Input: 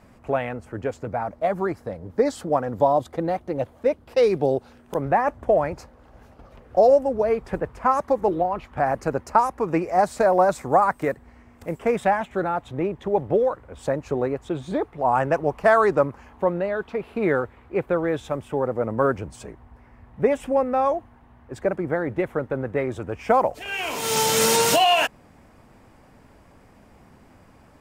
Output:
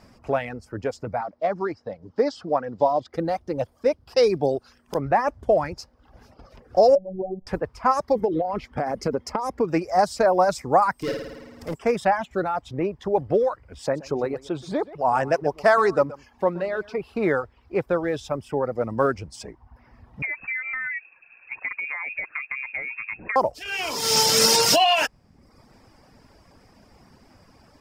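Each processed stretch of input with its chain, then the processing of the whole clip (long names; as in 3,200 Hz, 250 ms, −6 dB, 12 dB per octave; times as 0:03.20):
0:01.21–0:03.14: one scale factor per block 7 bits + high-pass filter 210 Hz 6 dB per octave + high-frequency loss of the air 160 metres
0:06.95–0:07.47: elliptic low-pass filter 690 Hz, stop band 60 dB + phases set to zero 188 Hz
0:08.15–0:09.65: downward compressor 12 to 1, threshold −23 dBFS + hollow resonant body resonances 230/440/2,100/3,200 Hz, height 8 dB, ringing for 20 ms
0:10.95–0:11.74: hard clipping −24 dBFS + flutter between parallel walls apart 9.3 metres, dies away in 1.5 s
0:13.82–0:16.98: low-shelf EQ 110 Hz −7 dB + single-tap delay 125 ms −11 dB
0:20.22–0:23.36: downward compressor 10 to 1, threshold −25 dBFS + voice inversion scrambler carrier 2,600 Hz
whole clip: reverb reduction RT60 0.71 s; parametric band 5,100 Hz +13.5 dB 0.43 octaves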